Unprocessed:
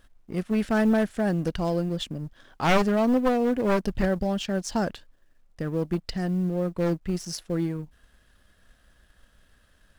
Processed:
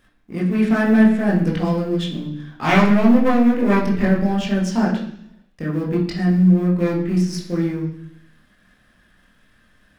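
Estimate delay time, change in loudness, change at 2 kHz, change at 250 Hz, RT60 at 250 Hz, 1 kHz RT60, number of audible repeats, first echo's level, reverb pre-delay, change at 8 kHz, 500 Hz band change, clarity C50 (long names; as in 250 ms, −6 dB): no echo audible, +8.0 dB, +7.5 dB, +9.5 dB, 0.85 s, 0.70 s, no echo audible, no echo audible, 18 ms, can't be measured, +3.5 dB, 6.0 dB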